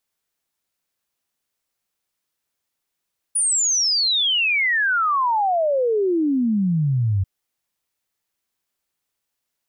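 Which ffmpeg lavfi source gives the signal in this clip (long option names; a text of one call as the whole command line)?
ffmpeg -f lavfi -i "aevalsrc='0.15*clip(min(t,3.89-t)/0.01,0,1)*sin(2*PI*9800*3.89/log(92/9800)*(exp(log(92/9800)*t/3.89)-1))':duration=3.89:sample_rate=44100" out.wav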